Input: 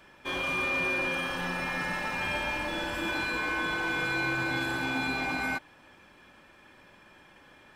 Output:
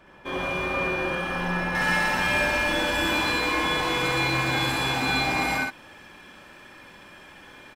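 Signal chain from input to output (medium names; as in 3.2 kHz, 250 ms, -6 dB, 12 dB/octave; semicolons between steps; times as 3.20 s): treble shelf 2.2 kHz -10 dB, from 1.75 s +3.5 dB; short-mantissa float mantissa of 6-bit; loudspeakers at several distances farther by 23 m -1 dB, 41 m -4 dB; trim +4 dB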